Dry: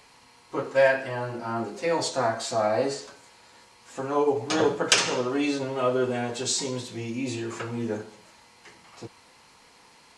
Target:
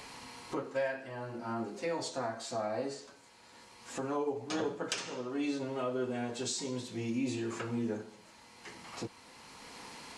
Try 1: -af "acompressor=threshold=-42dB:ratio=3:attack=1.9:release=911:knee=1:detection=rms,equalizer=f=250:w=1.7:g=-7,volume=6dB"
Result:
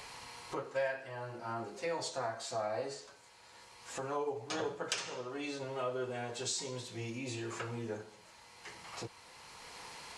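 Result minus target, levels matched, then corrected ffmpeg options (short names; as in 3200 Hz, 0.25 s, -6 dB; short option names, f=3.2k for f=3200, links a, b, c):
250 Hz band -6.0 dB
-af "acompressor=threshold=-42dB:ratio=3:attack=1.9:release=911:knee=1:detection=rms,equalizer=f=250:w=1.7:g=4.5,volume=6dB"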